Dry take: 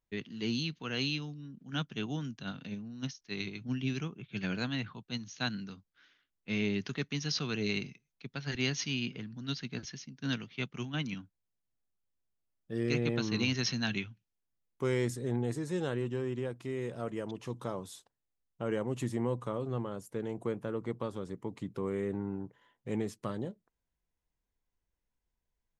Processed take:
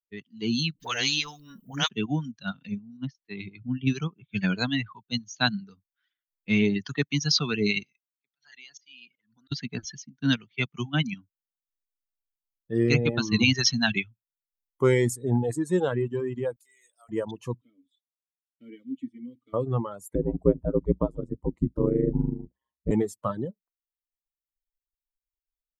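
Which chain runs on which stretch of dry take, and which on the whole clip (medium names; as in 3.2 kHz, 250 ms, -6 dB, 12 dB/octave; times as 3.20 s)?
0.74–1.89 s: dynamic bell 780 Hz, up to -6 dB, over -52 dBFS, Q 0.88 + phase dispersion highs, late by 60 ms, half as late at 410 Hz + spectrum-flattening compressor 2:1
2.97–3.87 s: compression 1.5:1, threshold -38 dBFS + distance through air 240 m
7.83–9.52 s: compression 16:1, threshold -42 dBFS + high-pass 1 kHz 6 dB/octave + slow attack 177 ms
16.56–17.09 s: high-pass 210 Hz + differentiator
17.61–19.54 s: block-companded coder 5-bit + vowel filter i + comb of notches 180 Hz
20.15–22.91 s: tilt shelf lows +8.5 dB, about 740 Hz + ring modulator 62 Hz
whole clip: expander on every frequency bin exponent 1.5; reverb removal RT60 1.4 s; level rider gain up to 11 dB; trim +2 dB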